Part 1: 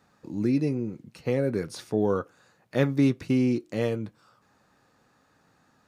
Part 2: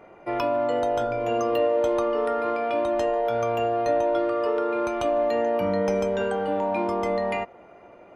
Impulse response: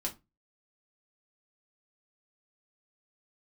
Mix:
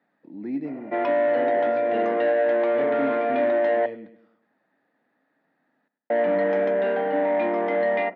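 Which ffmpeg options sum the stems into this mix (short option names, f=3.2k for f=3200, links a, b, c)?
-filter_complex "[0:a]volume=-9dB,asplit=2[a][b];[b]volume=-13.5dB[c];[1:a]adelay=650,volume=0.5dB,asplit=3[d][e][f];[d]atrim=end=3.86,asetpts=PTS-STARTPTS,afade=t=out:st=3.856:d=0.004:c=hsin[g];[e]atrim=start=3.86:end=6.1,asetpts=PTS-STARTPTS,volume=0[h];[f]atrim=start=6.1,asetpts=PTS-STARTPTS,afade=t=in:d=0.004:c=hsin[i];[g][h][i]concat=n=3:v=0:a=1,asplit=2[j][k];[k]volume=-14dB[l];[2:a]atrim=start_sample=2205[m];[l][m]afir=irnorm=-1:irlink=0[n];[c]aecho=0:1:101|202|303|404|505|606:1|0.44|0.194|0.0852|0.0375|0.0165[o];[a][j][n][o]amix=inputs=4:normalize=0,asoftclip=type=tanh:threshold=-22dB,highpass=f=180:w=0.5412,highpass=f=180:w=1.3066,equalizer=f=280:t=q:w=4:g=7,equalizer=f=650:t=q:w=4:g=8,equalizer=f=1.2k:t=q:w=4:g=-5,equalizer=f=1.9k:t=q:w=4:g=9,equalizer=f=2.7k:t=q:w=4:g=-4,lowpass=f=3.3k:w=0.5412,lowpass=f=3.3k:w=1.3066"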